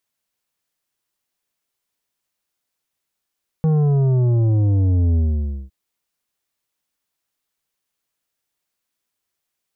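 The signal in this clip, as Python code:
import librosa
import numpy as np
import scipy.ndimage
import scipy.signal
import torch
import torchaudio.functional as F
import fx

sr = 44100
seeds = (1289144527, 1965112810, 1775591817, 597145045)

y = fx.sub_drop(sr, level_db=-14.5, start_hz=160.0, length_s=2.06, drive_db=9.0, fade_s=0.54, end_hz=65.0)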